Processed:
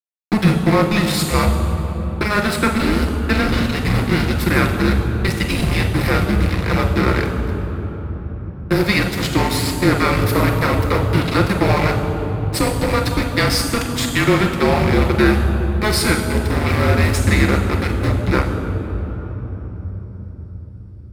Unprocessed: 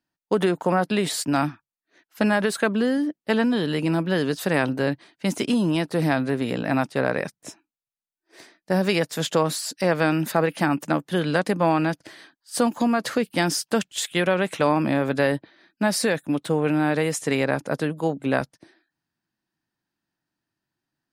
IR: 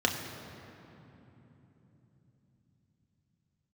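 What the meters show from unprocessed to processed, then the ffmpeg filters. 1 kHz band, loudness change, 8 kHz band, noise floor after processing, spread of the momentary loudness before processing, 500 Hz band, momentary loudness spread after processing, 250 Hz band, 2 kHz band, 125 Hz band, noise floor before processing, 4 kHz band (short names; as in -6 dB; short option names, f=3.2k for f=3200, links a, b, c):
+5.0 dB, +5.5 dB, +4.0 dB, -33 dBFS, 5 LU, +3.0 dB, 12 LU, +4.5 dB, +6.5 dB, +12.0 dB, under -85 dBFS, +7.0 dB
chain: -filter_complex "[0:a]aemphasis=mode=production:type=50fm,afreqshift=-210,aeval=exprs='val(0)*gte(abs(val(0)),0.0944)':c=same[a];[1:a]atrim=start_sample=2205,asetrate=30429,aresample=44100[b];[a][b]afir=irnorm=-1:irlink=0,volume=-7dB"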